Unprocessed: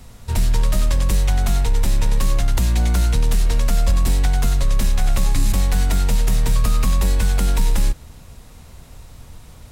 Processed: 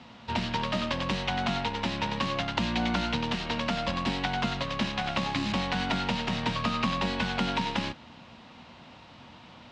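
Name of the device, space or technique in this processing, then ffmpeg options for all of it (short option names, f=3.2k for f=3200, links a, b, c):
kitchen radio: -af "highpass=220,equalizer=f=230:t=q:w=4:g=5,equalizer=f=430:t=q:w=4:g=-8,equalizer=f=920:t=q:w=4:g=4,equalizer=f=2.9k:t=q:w=4:g=5,lowpass=f=4.3k:w=0.5412,lowpass=f=4.3k:w=1.3066"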